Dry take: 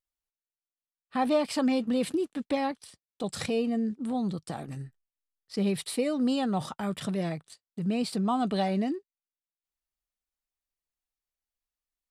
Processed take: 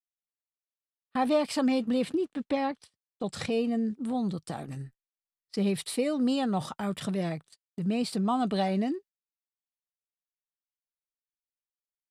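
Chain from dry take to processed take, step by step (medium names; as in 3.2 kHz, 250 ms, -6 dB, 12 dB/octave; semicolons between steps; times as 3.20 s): 2.01–3.51 s: treble shelf 6.4 kHz -> 9.5 kHz -12 dB; gate -47 dBFS, range -22 dB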